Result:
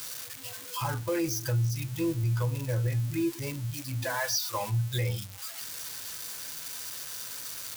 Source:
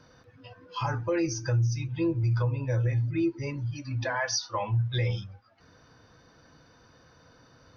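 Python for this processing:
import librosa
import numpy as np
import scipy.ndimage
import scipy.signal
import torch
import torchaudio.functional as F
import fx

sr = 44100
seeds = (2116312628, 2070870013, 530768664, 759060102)

y = x + 0.5 * 10.0 ** (-25.5 / 20.0) * np.diff(np.sign(x), prepend=np.sign(x[:1]))
y = y * 10.0 ** (-2.0 / 20.0)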